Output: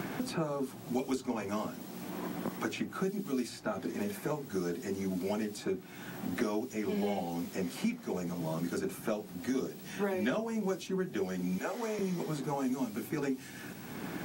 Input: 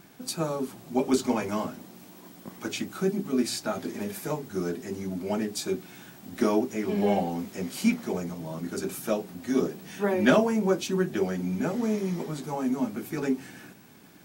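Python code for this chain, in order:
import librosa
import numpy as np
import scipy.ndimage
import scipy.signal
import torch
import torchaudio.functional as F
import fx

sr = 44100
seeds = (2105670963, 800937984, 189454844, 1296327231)

y = fx.highpass(x, sr, hz=530.0, slope=12, at=(11.58, 11.99))
y = fx.band_squash(y, sr, depth_pct=100)
y = y * librosa.db_to_amplitude(-7.0)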